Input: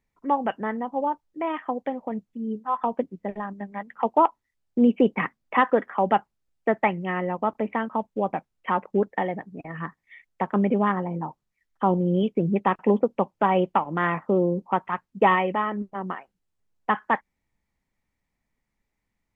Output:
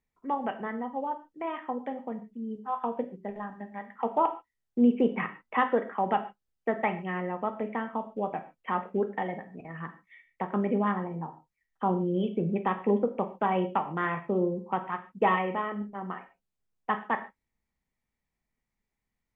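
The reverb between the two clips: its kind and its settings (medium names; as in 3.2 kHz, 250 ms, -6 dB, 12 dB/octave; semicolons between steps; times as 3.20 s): gated-style reverb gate 170 ms falling, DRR 6.5 dB; trim -6.5 dB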